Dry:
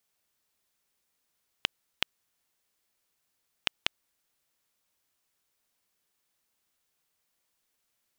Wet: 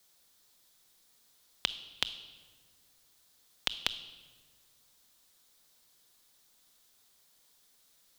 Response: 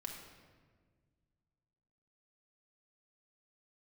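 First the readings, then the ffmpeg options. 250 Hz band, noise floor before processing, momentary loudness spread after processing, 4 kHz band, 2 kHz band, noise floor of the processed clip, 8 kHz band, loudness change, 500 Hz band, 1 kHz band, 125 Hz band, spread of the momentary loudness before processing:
-1.5 dB, -79 dBFS, 17 LU, +0.5 dB, -3.5 dB, -67 dBFS, +2.0 dB, -1.5 dB, -2.0 dB, -2.5 dB, -2.0 dB, 3 LU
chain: -filter_complex "[0:a]alimiter=limit=-15.5dB:level=0:latency=1:release=422,afreqshift=-40,asplit=2[a][b];[b]highshelf=f=2.7k:t=q:w=3:g=8.5[c];[1:a]atrim=start_sample=2205[d];[c][d]afir=irnorm=-1:irlink=0,volume=-6dB[e];[a][e]amix=inputs=2:normalize=0,volume=6.5dB"

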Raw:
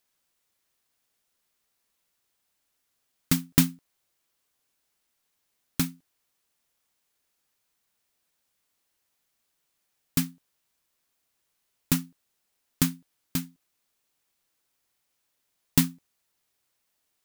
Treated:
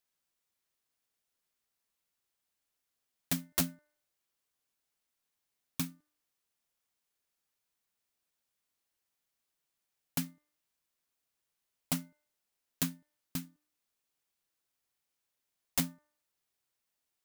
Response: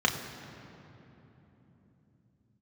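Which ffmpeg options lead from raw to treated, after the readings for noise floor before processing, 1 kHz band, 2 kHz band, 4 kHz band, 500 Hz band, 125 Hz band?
-77 dBFS, -5.0 dB, -7.5 dB, -7.0 dB, -4.5 dB, -11.5 dB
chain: -af "aeval=exprs='(mod(3.98*val(0)+1,2)-1)/3.98':c=same,bandreject=f=298.4:t=h:w=4,bandreject=f=596.8:t=h:w=4,bandreject=f=895.2:t=h:w=4,bandreject=f=1.1936k:t=h:w=4,bandreject=f=1.492k:t=h:w=4,bandreject=f=1.7904k:t=h:w=4,bandreject=f=2.0888k:t=h:w=4,volume=-8.5dB"

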